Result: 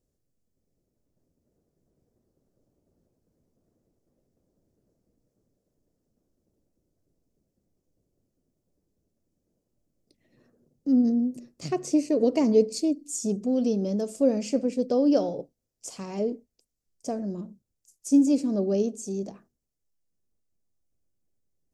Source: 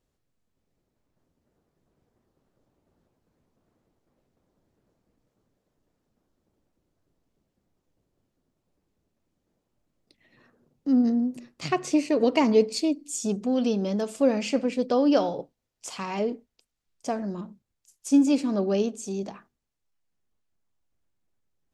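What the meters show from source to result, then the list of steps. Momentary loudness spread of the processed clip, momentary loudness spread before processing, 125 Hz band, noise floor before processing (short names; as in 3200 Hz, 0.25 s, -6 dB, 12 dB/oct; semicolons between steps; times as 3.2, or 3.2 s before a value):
17 LU, 17 LU, 0.0 dB, -80 dBFS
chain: band shelf 1800 Hz -11.5 dB 2.6 oct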